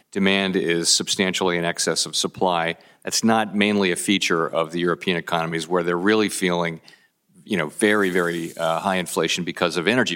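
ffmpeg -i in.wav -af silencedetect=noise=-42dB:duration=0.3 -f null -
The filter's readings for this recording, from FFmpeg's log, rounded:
silence_start: 6.94
silence_end: 7.38 | silence_duration: 0.44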